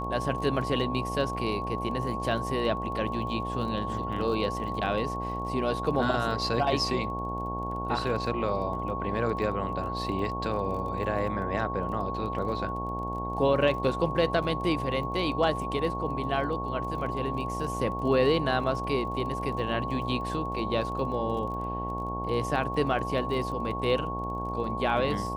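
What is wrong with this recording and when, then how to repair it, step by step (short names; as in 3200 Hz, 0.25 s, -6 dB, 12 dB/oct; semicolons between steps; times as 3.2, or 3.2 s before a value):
buzz 60 Hz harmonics 16 -35 dBFS
crackle 26/s -38 dBFS
tone 1100 Hz -33 dBFS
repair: de-click; de-hum 60 Hz, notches 16; notch 1100 Hz, Q 30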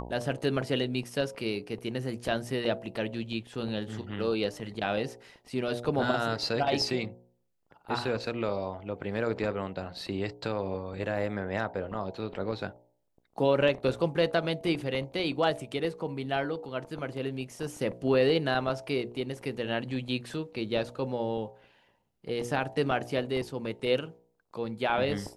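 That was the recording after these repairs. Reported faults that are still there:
none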